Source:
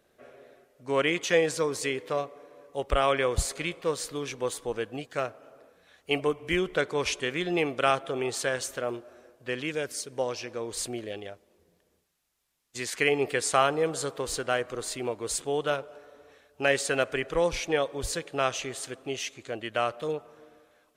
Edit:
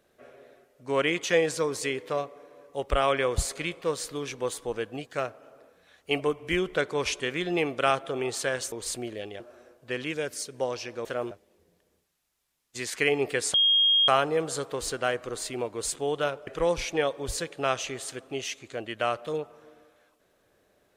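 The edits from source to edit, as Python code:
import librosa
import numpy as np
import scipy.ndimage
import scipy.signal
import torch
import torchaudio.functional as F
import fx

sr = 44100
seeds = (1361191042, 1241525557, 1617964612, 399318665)

y = fx.edit(x, sr, fx.swap(start_s=8.72, length_s=0.26, other_s=10.63, other_length_s=0.68),
    fx.insert_tone(at_s=13.54, length_s=0.54, hz=3250.0, db=-18.0),
    fx.cut(start_s=15.93, length_s=1.29), tone=tone)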